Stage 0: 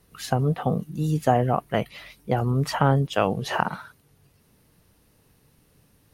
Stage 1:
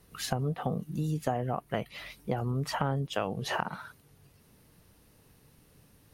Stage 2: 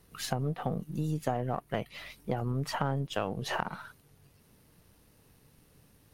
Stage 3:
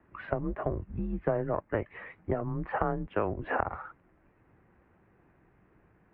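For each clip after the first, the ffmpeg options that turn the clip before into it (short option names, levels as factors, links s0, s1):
-af "acompressor=threshold=0.0316:ratio=3"
-af "aeval=exprs='if(lt(val(0),0),0.708*val(0),val(0))':c=same"
-af "highpass=f=190:t=q:w=0.5412,highpass=f=190:t=q:w=1.307,lowpass=f=2200:t=q:w=0.5176,lowpass=f=2200:t=q:w=0.7071,lowpass=f=2200:t=q:w=1.932,afreqshift=-110,volume=1.5"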